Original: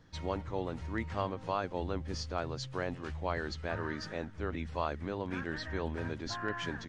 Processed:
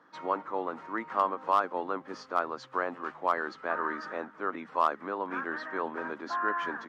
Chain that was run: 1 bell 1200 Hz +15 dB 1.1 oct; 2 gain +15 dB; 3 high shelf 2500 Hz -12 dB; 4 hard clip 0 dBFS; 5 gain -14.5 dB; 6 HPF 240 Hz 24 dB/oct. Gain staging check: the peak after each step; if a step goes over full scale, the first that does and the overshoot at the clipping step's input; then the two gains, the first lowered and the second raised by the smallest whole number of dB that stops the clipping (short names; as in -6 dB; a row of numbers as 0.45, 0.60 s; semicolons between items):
-10.0, +5.0, +3.0, 0.0, -14.5, -12.0 dBFS; step 2, 3.0 dB; step 2 +12 dB, step 5 -11.5 dB